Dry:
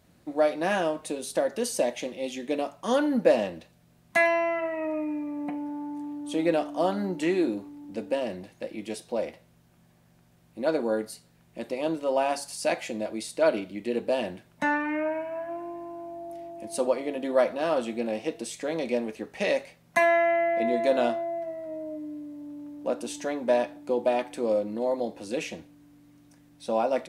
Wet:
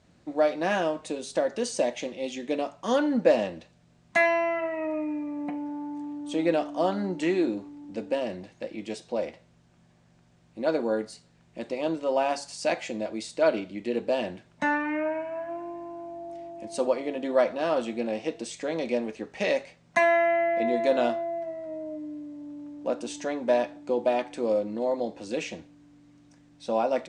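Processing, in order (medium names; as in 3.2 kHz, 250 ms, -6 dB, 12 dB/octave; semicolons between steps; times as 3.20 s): steep low-pass 8.2 kHz 36 dB/octave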